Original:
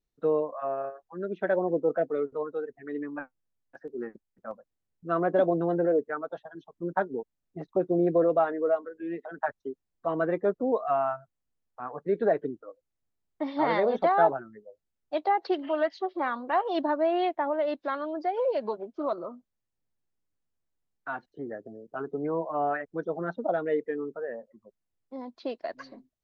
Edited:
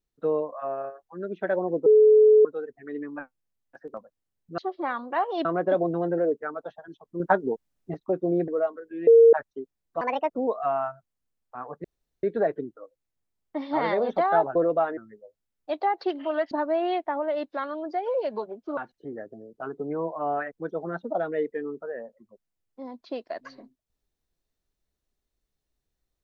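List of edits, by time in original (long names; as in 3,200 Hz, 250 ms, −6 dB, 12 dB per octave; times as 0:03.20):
0:01.86–0:02.45: beep over 429 Hz −12 dBFS
0:03.94–0:04.48: remove
0:06.87–0:07.61: clip gain +6 dB
0:08.15–0:08.57: move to 0:14.41
0:09.16–0:09.42: beep over 460 Hz −10 dBFS
0:10.10–0:10.55: play speed 154%
0:12.09: splice in room tone 0.39 s
0:15.95–0:16.82: move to 0:05.12
0:19.08–0:21.11: remove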